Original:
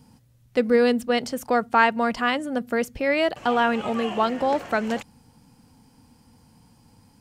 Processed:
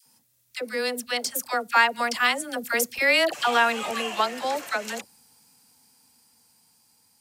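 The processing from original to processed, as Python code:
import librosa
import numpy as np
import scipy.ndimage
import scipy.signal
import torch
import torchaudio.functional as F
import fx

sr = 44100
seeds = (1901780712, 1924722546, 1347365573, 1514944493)

y = fx.doppler_pass(x, sr, speed_mps=6, closest_m=6.8, pass_at_s=3.12)
y = fx.tilt_eq(y, sr, slope=4.5)
y = fx.notch(y, sr, hz=3000.0, q=22.0)
y = fx.dispersion(y, sr, late='lows', ms=64.0, hz=790.0)
y = y * 10.0 ** (1.5 / 20.0)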